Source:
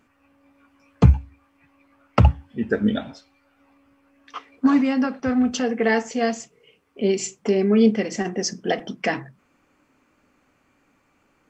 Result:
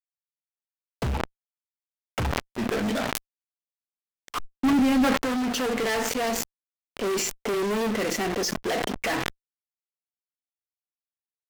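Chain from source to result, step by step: in parallel at -5.5 dB: bit crusher 6-bit; on the sum: tone controls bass -10 dB, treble -7 dB; de-hum 239.7 Hz, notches 3; fuzz box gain 33 dB, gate -35 dBFS; 4.37–5.05 s: bass shelf 320 Hz +10.5 dB; decay stretcher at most 26 dB/s; trim -11 dB

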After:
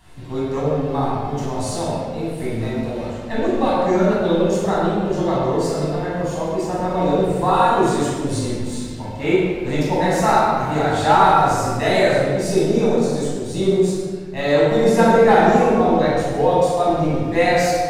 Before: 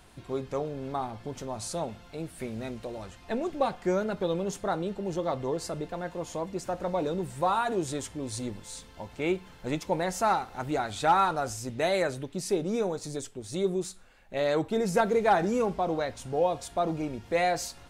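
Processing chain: in parallel at -8 dB: crossover distortion -44.5 dBFS; on the sum: reverberation RT60 1.6 s, pre-delay 16 ms, DRR -8 dB; trim -2.5 dB

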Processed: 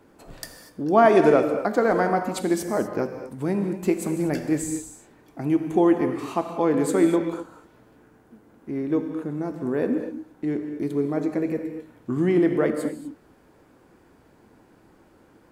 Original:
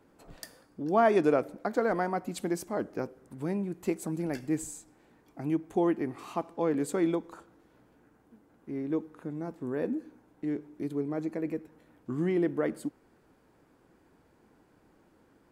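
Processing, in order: gated-style reverb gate 270 ms flat, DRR 6 dB; trim +7 dB

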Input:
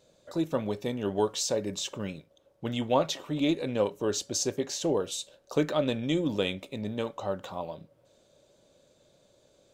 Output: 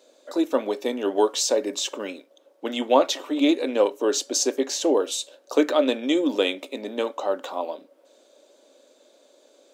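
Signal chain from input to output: elliptic high-pass 260 Hz, stop band 50 dB; trim +7.5 dB

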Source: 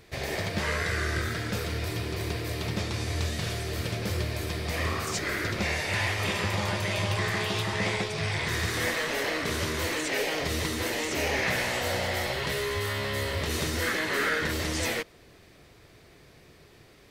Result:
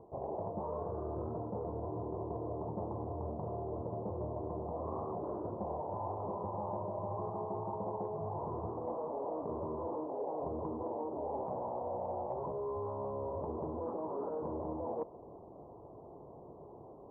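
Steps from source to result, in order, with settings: steep low-pass 990 Hz 72 dB/octave; tilt EQ +4 dB/octave; reverse; compression 6:1, threshold -47 dBFS, peak gain reduction 15 dB; reverse; trim +10.5 dB

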